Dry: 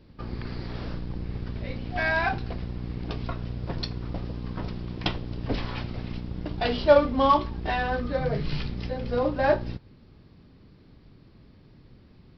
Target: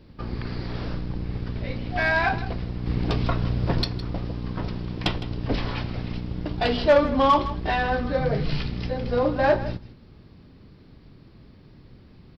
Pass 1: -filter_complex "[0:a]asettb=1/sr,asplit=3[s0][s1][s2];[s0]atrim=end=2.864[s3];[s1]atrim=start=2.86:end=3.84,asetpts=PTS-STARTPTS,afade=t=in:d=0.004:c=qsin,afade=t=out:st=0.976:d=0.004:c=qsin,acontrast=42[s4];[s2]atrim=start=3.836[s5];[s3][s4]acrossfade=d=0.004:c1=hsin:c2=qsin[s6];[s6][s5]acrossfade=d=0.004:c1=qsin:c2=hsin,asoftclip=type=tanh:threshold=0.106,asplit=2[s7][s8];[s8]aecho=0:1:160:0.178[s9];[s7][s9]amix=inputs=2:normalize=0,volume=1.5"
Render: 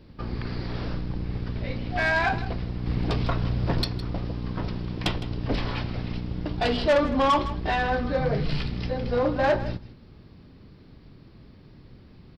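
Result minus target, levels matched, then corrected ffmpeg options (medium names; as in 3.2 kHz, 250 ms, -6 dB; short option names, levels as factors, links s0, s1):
saturation: distortion +6 dB
-filter_complex "[0:a]asettb=1/sr,asplit=3[s0][s1][s2];[s0]atrim=end=2.864[s3];[s1]atrim=start=2.86:end=3.84,asetpts=PTS-STARTPTS,afade=t=in:d=0.004:c=qsin,afade=t=out:st=0.976:d=0.004:c=qsin,acontrast=42[s4];[s2]atrim=start=3.836[s5];[s3][s4]acrossfade=d=0.004:c1=hsin:c2=qsin[s6];[s6][s5]acrossfade=d=0.004:c1=qsin:c2=hsin,asoftclip=type=tanh:threshold=0.211,asplit=2[s7][s8];[s8]aecho=0:1:160:0.178[s9];[s7][s9]amix=inputs=2:normalize=0,volume=1.5"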